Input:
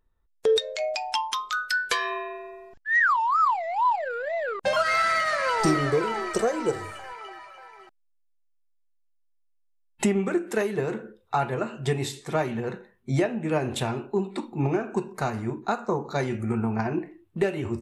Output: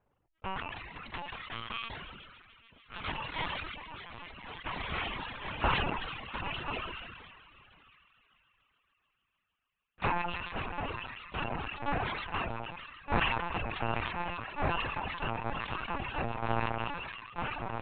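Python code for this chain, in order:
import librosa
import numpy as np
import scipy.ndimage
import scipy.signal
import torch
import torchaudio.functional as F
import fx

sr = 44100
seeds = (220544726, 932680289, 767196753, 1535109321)

y = fx.bit_reversed(x, sr, seeds[0], block=128)
y = scipy.signal.sosfilt(scipy.signal.butter(2, 2100.0, 'lowpass', fs=sr, output='sos'), y)
y = fx.hum_notches(y, sr, base_hz=50, count=3)
y = fx.spec_gate(y, sr, threshold_db=-10, keep='weak')
y = fx.peak_eq(y, sr, hz=890.0, db=7.0, octaves=1.4)
y = fx.doubler(y, sr, ms=15.0, db=-13)
y = fx.echo_wet_highpass(y, sr, ms=148, feedback_pct=81, hz=1500.0, wet_db=-11.0)
y = fx.lpc_vocoder(y, sr, seeds[1], excitation='pitch_kept', order=8)
y = fx.dereverb_blind(y, sr, rt60_s=0.93)
y = fx.sustainer(y, sr, db_per_s=32.0)
y = F.gain(torch.from_numpy(y), 3.5).numpy()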